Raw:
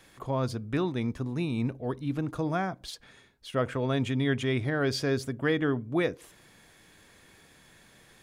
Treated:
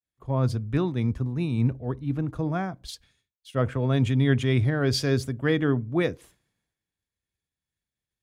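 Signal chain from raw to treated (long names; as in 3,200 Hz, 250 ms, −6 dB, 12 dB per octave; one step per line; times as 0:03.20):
downward expander −48 dBFS
parametric band 64 Hz +12.5 dB 2.6 octaves
multiband upward and downward expander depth 70%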